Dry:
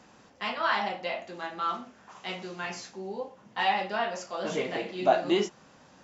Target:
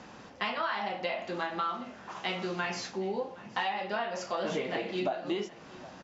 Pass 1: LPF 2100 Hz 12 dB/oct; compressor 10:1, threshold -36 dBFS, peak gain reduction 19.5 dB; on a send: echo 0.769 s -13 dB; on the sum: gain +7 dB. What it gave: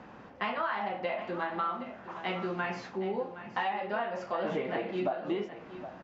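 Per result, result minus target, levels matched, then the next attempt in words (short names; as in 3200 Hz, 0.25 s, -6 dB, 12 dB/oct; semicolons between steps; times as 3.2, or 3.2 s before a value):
4000 Hz band -6.5 dB; echo-to-direct +7 dB
LPF 5500 Hz 12 dB/oct; compressor 10:1, threshold -36 dBFS, peak gain reduction 19.5 dB; on a send: echo 0.769 s -13 dB; on the sum: gain +7 dB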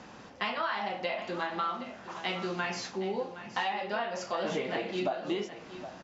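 echo-to-direct +7 dB
LPF 5500 Hz 12 dB/oct; compressor 10:1, threshold -36 dBFS, peak gain reduction 19.5 dB; on a send: echo 0.769 s -20 dB; on the sum: gain +7 dB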